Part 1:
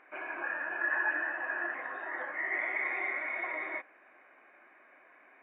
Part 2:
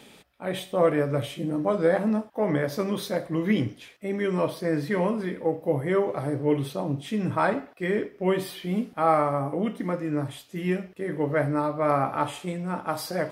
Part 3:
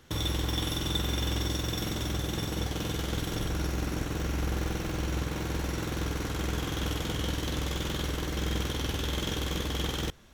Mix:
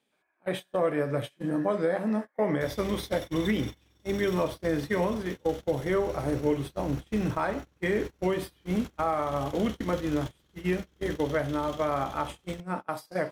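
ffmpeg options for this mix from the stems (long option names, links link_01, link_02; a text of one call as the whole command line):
ffmpeg -i stem1.wav -i stem2.wav -i stem3.wav -filter_complex "[0:a]acompressor=threshold=-41dB:ratio=10,volume=-5.5dB[link_01];[1:a]lowshelf=frequency=150:gain=-5,volume=0.5dB[link_02];[2:a]tremolo=f=30:d=0.261,adelay=2500,volume=-7dB[link_03];[link_01][link_02][link_03]amix=inputs=3:normalize=0,agate=range=-27dB:threshold=-30dB:ratio=16:detection=peak,alimiter=limit=-16.5dB:level=0:latency=1:release=347" out.wav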